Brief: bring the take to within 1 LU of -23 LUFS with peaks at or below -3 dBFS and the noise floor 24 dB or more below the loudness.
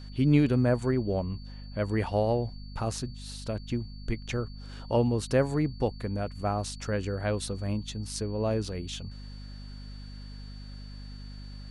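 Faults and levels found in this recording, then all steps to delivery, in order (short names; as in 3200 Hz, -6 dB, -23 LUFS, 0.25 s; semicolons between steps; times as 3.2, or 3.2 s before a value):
hum 50 Hz; harmonics up to 250 Hz; hum level -40 dBFS; steady tone 4500 Hz; tone level -53 dBFS; loudness -30.0 LUFS; peak -10.5 dBFS; loudness target -23.0 LUFS
-> notches 50/100/150/200/250 Hz; notch 4500 Hz, Q 30; gain +7 dB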